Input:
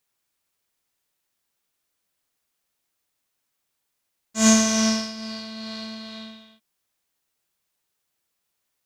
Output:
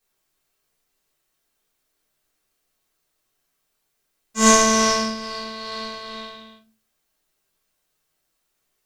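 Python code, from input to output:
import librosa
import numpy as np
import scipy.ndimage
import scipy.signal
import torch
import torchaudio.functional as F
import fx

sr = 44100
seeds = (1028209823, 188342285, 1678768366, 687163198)

y = fx.room_shoebox(x, sr, seeds[0], volume_m3=130.0, walls='furnished', distance_m=3.7)
y = y * librosa.db_to_amplitude(-3.5)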